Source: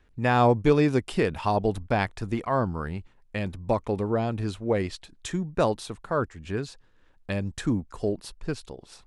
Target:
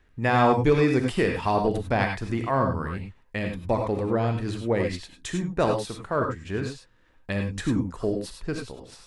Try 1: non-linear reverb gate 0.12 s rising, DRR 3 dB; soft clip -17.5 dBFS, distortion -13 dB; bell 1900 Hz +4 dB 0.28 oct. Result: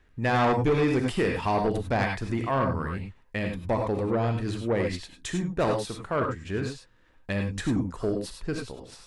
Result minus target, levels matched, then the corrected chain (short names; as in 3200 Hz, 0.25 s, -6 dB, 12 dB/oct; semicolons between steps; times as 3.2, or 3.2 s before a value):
soft clip: distortion +16 dB
non-linear reverb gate 0.12 s rising, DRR 3 dB; soft clip -6 dBFS, distortion -29 dB; bell 1900 Hz +4 dB 0.28 oct